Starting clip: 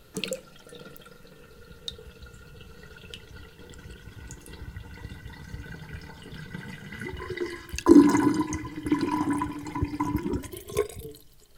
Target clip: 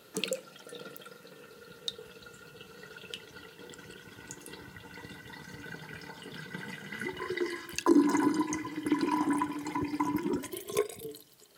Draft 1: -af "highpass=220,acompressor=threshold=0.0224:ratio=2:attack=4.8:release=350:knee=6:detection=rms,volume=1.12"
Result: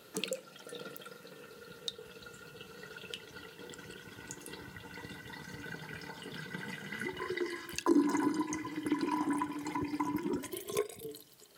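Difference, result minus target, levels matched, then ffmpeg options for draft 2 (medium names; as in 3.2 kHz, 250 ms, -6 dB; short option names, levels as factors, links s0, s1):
compression: peak gain reduction +4 dB
-af "highpass=220,acompressor=threshold=0.0596:ratio=2:attack=4.8:release=350:knee=6:detection=rms,volume=1.12"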